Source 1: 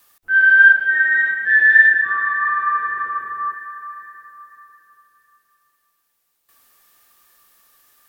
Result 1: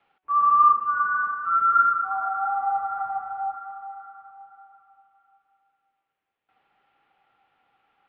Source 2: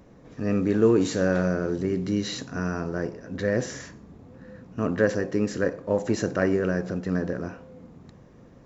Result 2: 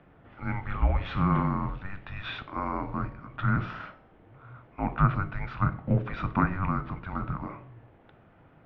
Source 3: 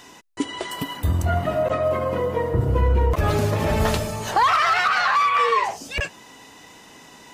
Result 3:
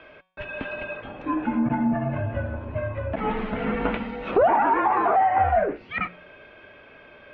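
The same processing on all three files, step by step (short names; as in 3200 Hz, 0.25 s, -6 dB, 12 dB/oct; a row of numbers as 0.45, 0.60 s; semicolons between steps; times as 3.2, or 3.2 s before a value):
de-hum 188.8 Hz, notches 33; mistuned SSB -390 Hz 530–3300 Hz; treble ducked by the level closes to 1300 Hz, closed at -18 dBFS; normalise peaks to -9 dBFS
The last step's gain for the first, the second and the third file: -4.5, +4.5, +0.5 dB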